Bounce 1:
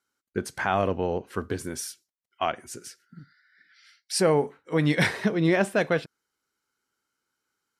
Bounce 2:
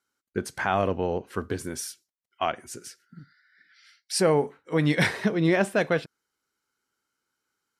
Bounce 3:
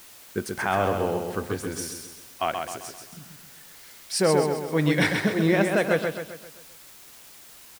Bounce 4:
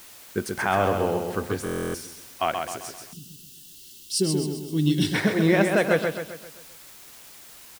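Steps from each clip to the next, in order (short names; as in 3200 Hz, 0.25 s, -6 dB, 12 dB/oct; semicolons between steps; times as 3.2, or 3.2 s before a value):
nothing audible
on a send: feedback echo 0.131 s, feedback 47%, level -5 dB; on the sum: requantised 8-bit, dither triangular
spectral gain 3.13–5.14, 410–2600 Hz -21 dB; stuck buffer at 1.64, samples 1024, times 12; gain +1.5 dB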